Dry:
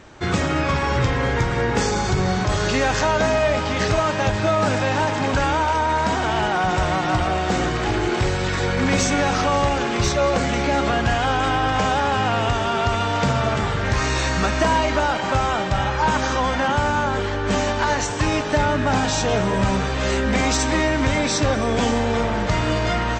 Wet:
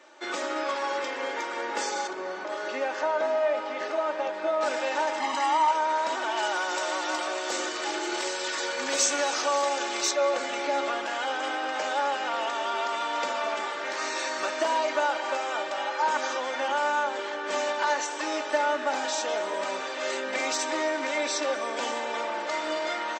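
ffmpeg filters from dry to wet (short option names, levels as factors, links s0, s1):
-filter_complex "[0:a]asettb=1/sr,asplit=3[s0][s1][s2];[s0]atrim=end=2.074[s3];[s1]atrim=start=2.07:end=4.61,asetpts=PTS-STARTPTS,afade=t=in:d=0.004:c=qsin,afade=t=out:st=2.536:d=0.004:c=qsin,lowpass=f=1500:p=1[s4];[s2]atrim=start=4.606[s5];[s3][s4]acrossfade=d=0.004:c1=hsin:c2=qsin[s6];[s6][s5]acrossfade=d=0.004:c1=qsin:c2=hsin,asettb=1/sr,asplit=3[s7][s8][s9];[s7]atrim=end=5.204[s10];[s8]atrim=start=5.2:end=5.71,asetpts=PTS-STARTPTS,afade=t=in:d=0.004:c=qsin,afade=t=out:st=0.506:d=0.004:c=qsin,aecho=1:1:1:0.86,atrim=end_sample=22491[s11];[s9]atrim=start=5.706[s12];[s10][s11]acrossfade=d=0.004:c1=hsin:c2=qsin[s13];[s13][s12]acrossfade=d=0.004:c1=qsin:c2=hsin,asettb=1/sr,asplit=3[s14][s15][s16];[s14]atrim=end=6.374[s17];[s15]atrim=start=6.37:end=10.11,asetpts=PTS-STARTPTS,afade=t=in:d=0.004:c=qsin,afade=t=out:st=3.736:d=0.004:c=qsin,bass=f=250:g=-2,treble=f=4000:g=9[s18];[s16]atrim=start=10.106[s19];[s17][s18]acrossfade=d=0.004:c1=hsin:c2=qsin[s20];[s20][s19]acrossfade=d=0.004:c1=qsin:c2=hsin,highpass=f=380:w=0.5412,highpass=f=380:w=1.3066,aecho=1:1:3.4:0.64,volume=0.398"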